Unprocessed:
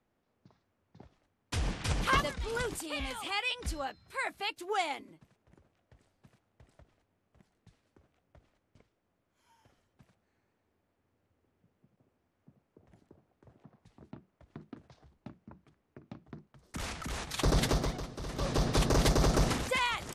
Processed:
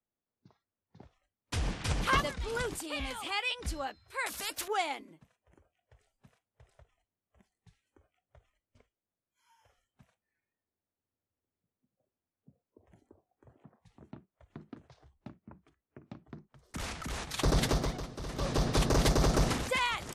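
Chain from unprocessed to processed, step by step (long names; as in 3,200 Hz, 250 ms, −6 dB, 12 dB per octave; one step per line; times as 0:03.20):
noise reduction from a noise print of the clip's start 17 dB
0:04.26–0:04.68: every bin compressed towards the loudest bin 4 to 1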